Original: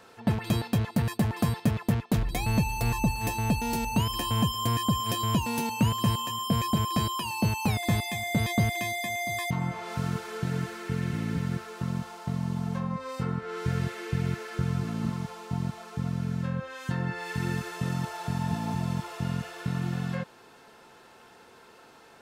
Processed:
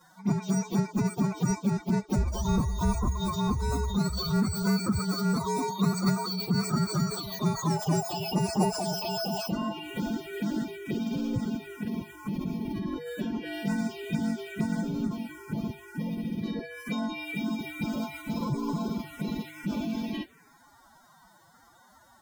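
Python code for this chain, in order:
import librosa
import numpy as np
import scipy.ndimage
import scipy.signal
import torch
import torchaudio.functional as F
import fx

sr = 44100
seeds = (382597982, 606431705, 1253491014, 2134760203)

y = fx.partial_stretch(x, sr, pct=114)
y = fx.pitch_keep_formants(y, sr, semitones=10.5)
y = fx.env_phaser(y, sr, low_hz=390.0, high_hz=3200.0, full_db=-27.5)
y = y * librosa.db_to_amplitude(3.5)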